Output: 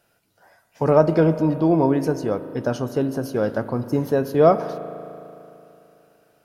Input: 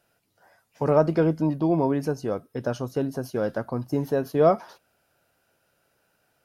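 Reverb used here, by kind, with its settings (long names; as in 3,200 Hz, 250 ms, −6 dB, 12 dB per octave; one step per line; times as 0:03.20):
spring reverb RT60 3 s, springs 37 ms, chirp 40 ms, DRR 11.5 dB
level +4 dB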